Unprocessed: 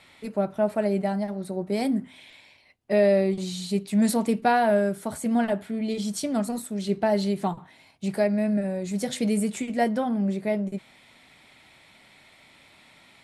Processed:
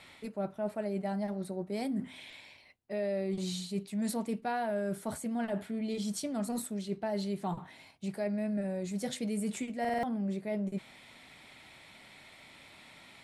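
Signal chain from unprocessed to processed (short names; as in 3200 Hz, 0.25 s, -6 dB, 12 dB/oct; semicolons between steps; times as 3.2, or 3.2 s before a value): reverse; compressor 4:1, threshold -33 dBFS, peak gain reduction 14.5 dB; reverse; stuck buffer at 9.8, samples 2048, times 4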